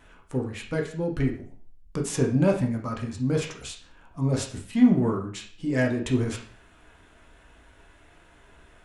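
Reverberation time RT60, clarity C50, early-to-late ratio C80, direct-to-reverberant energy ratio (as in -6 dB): 0.45 s, 7.5 dB, 12.5 dB, 0.5 dB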